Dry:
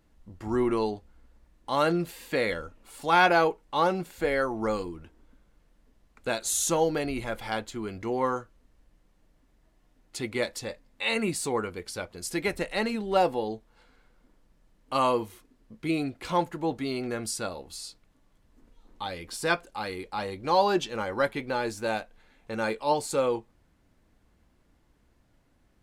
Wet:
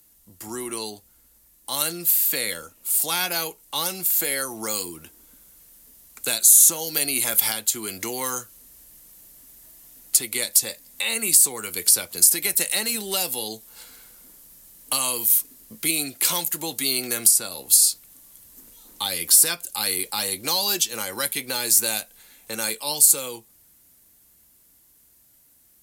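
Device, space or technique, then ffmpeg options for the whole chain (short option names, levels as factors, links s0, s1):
FM broadcast chain: -filter_complex "[0:a]highpass=f=65:p=1,dynaudnorm=f=530:g=17:m=3.76,acrossover=split=110|240|2100[s0][s1][s2][s3];[s0]acompressor=threshold=0.00158:ratio=4[s4];[s1]acompressor=threshold=0.01:ratio=4[s5];[s2]acompressor=threshold=0.0316:ratio=4[s6];[s3]acompressor=threshold=0.0251:ratio=4[s7];[s4][s5][s6][s7]amix=inputs=4:normalize=0,aemphasis=mode=production:type=75fm,alimiter=limit=0.211:level=0:latency=1:release=495,asoftclip=type=hard:threshold=0.168,lowpass=f=15000:w=0.5412,lowpass=f=15000:w=1.3066,aemphasis=mode=production:type=75fm,volume=0.841"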